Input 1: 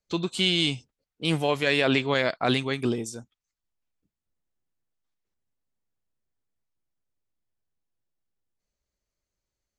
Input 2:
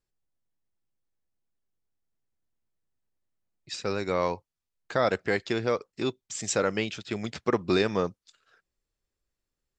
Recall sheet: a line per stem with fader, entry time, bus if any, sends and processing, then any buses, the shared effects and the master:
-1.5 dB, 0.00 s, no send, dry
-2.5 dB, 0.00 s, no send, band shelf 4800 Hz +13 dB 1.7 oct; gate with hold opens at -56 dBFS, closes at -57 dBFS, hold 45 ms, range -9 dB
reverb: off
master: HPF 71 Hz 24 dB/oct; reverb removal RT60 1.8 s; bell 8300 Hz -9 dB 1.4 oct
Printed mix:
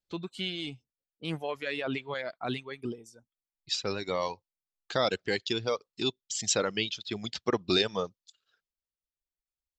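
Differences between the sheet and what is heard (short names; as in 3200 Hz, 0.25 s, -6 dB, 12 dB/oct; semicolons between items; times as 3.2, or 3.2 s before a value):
stem 1 -1.5 dB -> -8.5 dB; master: missing HPF 71 Hz 24 dB/oct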